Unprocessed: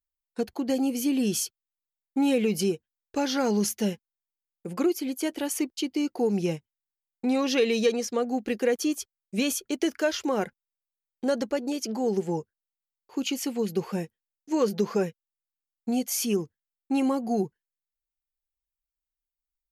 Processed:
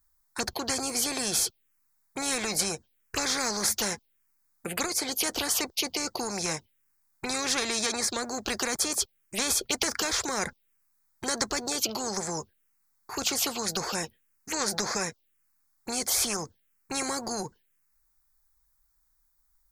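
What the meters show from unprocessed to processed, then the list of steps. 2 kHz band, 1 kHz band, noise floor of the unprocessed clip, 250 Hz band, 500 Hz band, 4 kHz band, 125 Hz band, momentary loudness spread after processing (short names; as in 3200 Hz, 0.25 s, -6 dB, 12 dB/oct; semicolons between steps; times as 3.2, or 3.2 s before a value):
+4.0 dB, +1.0 dB, under -85 dBFS, -10.5 dB, -8.5 dB, +6.0 dB, -7.0 dB, 10 LU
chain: envelope phaser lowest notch 490 Hz, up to 2900 Hz, full sweep at -25 dBFS; spectral compressor 4:1; gain +3.5 dB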